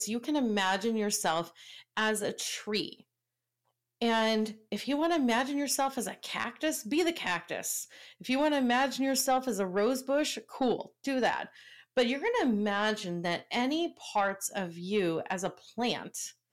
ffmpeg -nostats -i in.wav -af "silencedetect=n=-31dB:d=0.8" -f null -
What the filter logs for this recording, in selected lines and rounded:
silence_start: 2.93
silence_end: 4.02 | silence_duration: 1.09